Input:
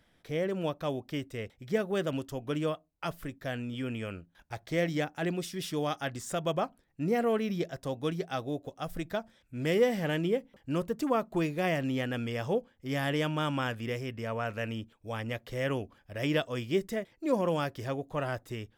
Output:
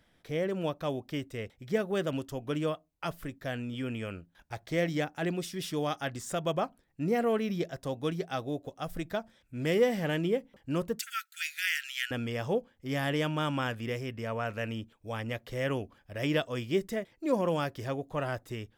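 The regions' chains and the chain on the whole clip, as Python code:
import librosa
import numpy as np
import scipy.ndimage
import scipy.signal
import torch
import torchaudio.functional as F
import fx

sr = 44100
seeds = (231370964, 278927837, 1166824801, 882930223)

y = fx.chain(x, sr, fx.brickwall_highpass(low_hz=1300.0),
    fx.high_shelf(hz=2100.0, db=11.0), at=(10.99, 12.11))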